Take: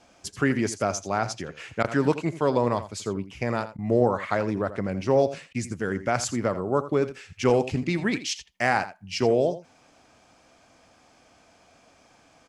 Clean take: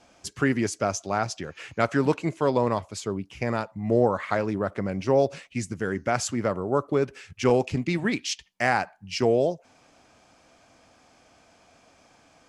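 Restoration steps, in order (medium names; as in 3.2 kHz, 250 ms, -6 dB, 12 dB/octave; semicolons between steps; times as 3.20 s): interpolate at 1.83/3.77/5.53 s, 13 ms; inverse comb 83 ms -14 dB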